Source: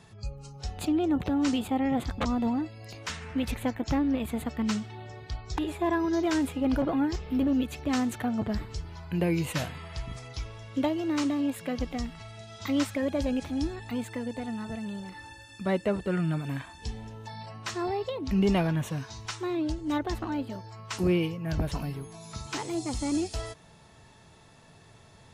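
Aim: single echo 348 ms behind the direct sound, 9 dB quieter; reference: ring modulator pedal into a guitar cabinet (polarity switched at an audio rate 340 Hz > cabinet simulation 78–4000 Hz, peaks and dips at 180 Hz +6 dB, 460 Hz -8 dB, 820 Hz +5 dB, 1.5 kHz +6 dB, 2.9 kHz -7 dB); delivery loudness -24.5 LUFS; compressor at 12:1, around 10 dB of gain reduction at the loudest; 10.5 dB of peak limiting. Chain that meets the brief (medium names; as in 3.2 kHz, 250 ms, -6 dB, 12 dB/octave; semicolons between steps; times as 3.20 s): compression 12:1, threshold -32 dBFS; peak limiter -33 dBFS; delay 348 ms -9 dB; polarity switched at an audio rate 340 Hz; cabinet simulation 78–4000 Hz, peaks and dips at 180 Hz +6 dB, 460 Hz -8 dB, 820 Hz +5 dB, 1.5 kHz +6 dB, 2.9 kHz -7 dB; trim +16 dB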